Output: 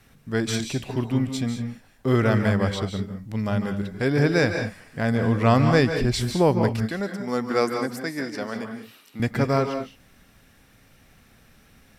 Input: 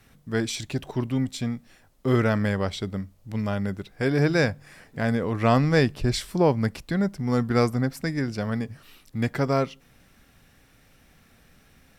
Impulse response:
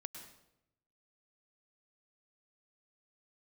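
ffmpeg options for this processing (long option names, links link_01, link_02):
-filter_complex "[0:a]asettb=1/sr,asplit=3[link_01][link_02][link_03];[link_01]atrim=end=6.884[link_04];[link_02]atrim=start=6.88:end=9.2,asetpts=PTS-STARTPTS,afade=type=in:duration=0.004:curve=qsin,afade=type=out:start_time=2.316:duration=0.004:curve=qsin,highpass=300[link_05];[link_03]atrim=start=9.196[link_06];[link_04][link_05]acrossfade=duration=0.004:curve1=hsin:curve2=qsin[link_07];[link_07][link_06]acrossfade=duration=0.004:curve1=qsin:curve2=hsin[link_08];[1:a]atrim=start_sample=2205,afade=type=out:start_time=0.2:duration=0.01,atrim=end_sample=9261,asetrate=30429,aresample=44100[link_09];[link_08][link_09]afir=irnorm=-1:irlink=0,volume=4dB"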